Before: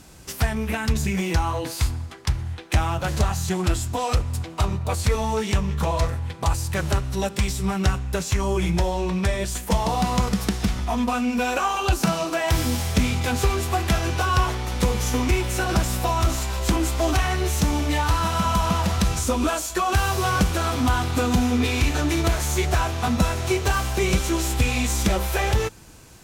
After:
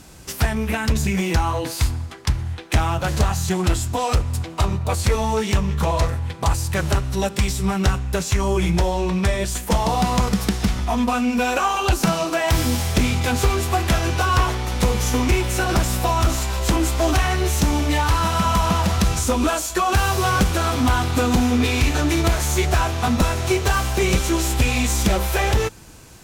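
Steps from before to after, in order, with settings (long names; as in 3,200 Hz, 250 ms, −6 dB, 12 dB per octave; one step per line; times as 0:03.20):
wavefolder on the positive side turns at −14.5 dBFS
level +3 dB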